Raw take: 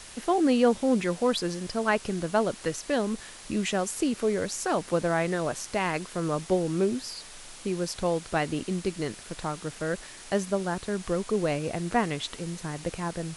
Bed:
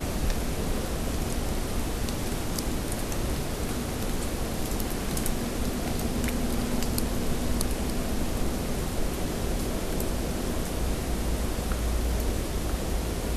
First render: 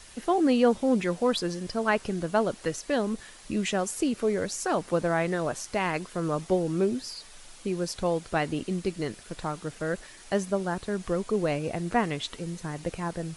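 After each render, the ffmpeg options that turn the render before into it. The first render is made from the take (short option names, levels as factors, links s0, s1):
-af "afftdn=nr=6:nf=-46"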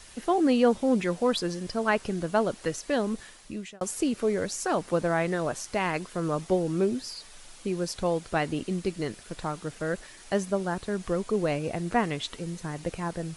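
-filter_complex "[0:a]asplit=2[s0][s1];[s0]atrim=end=3.81,asetpts=PTS-STARTPTS,afade=t=out:st=3.23:d=0.58[s2];[s1]atrim=start=3.81,asetpts=PTS-STARTPTS,afade=t=in:d=0.004:c=hsin[s3];[s2][s3]concat=n=2:v=0:a=1"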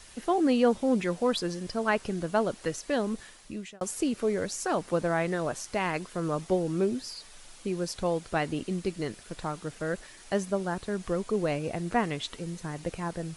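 -af "volume=0.841"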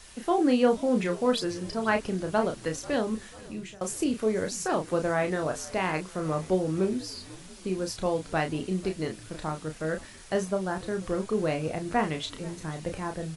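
-filter_complex "[0:a]asplit=2[s0][s1];[s1]adelay=32,volume=0.501[s2];[s0][s2]amix=inputs=2:normalize=0,asplit=6[s3][s4][s5][s6][s7][s8];[s4]adelay=490,afreqshift=-72,volume=0.0891[s9];[s5]adelay=980,afreqshift=-144,volume=0.0543[s10];[s6]adelay=1470,afreqshift=-216,volume=0.0331[s11];[s7]adelay=1960,afreqshift=-288,volume=0.0202[s12];[s8]adelay=2450,afreqshift=-360,volume=0.0123[s13];[s3][s9][s10][s11][s12][s13]amix=inputs=6:normalize=0"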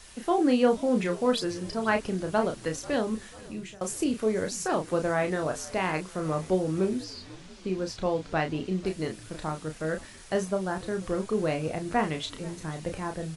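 -filter_complex "[0:a]asettb=1/sr,asplit=3[s0][s1][s2];[s0]atrim=end=7.044[s3];[s1]atrim=start=7.04:end=8.86,asetpts=PTS-STARTPTS,afade=t=in:d=0.004:c=qsin,afade=t=out:st=1.816:d=0.004:c=qsin,lowpass=5600[s4];[s2]atrim=start=8.856[s5];[s3][s4]acrossfade=d=0.004:c1=hsin:c2=qsin[s6];[s6][s5]acrossfade=d=0.004:c1=qsin:c2=hsin"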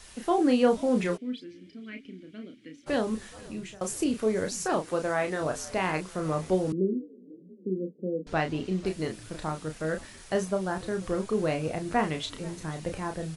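-filter_complex "[0:a]asplit=3[s0][s1][s2];[s0]afade=t=out:st=1.16:d=0.02[s3];[s1]asplit=3[s4][s5][s6];[s4]bandpass=f=270:t=q:w=8,volume=1[s7];[s5]bandpass=f=2290:t=q:w=8,volume=0.501[s8];[s6]bandpass=f=3010:t=q:w=8,volume=0.355[s9];[s7][s8][s9]amix=inputs=3:normalize=0,afade=t=in:st=1.16:d=0.02,afade=t=out:st=2.86:d=0.02[s10];[s2]afade=t=in:st=2.86:d=0.02[s11];[s3][s10][s11]amix=inputs=3:normalize=0,asettb=1/sr,asplit=3[s12][s13][s14];[s12]atrim=end=4.804[s15];[s13]atrim=start=4.8:end=5.41,asetpts=PTS-STARTPTS,afade=t=in:d=0.004:c=qsin,afade=t=out:st=0.606:d=0.004:c=qsin,lowshelf=f=240:g=-8[s16];[s14]atrim=start=5.406[s17];[s15][s16]acrossfade=d=0.004:c1=hsin:c2=qsin[s18];[s18][s17]acrossfade=d=0.004:c1=qsin:c2=hsin,asettb=1/sr,asplit=3[s19][s20][s21];[s19]atrim=end=6.724[s22];[s20]atrim=start=6.72:end=8.27,asetpts=PTS-STARTPTS,afade=t=in:d=0.004:c=qsin,afade=t=out:st=1.546:d=0.004:c=qsin,asuperpass=centerf=290:order=12:qfactor=0.88[s23];[s21]atrim=start=8.266[s24];[s22][s23]acrossfade=d=0.004:c1=hsin:c2=qsin[s25];[s25][s24]acrossfade=d=0.004:c1=qsin:c2=hsin"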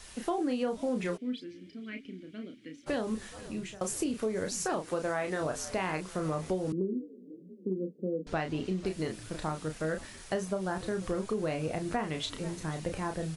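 -af "acompressor=threshold=0.0398:ratio=6"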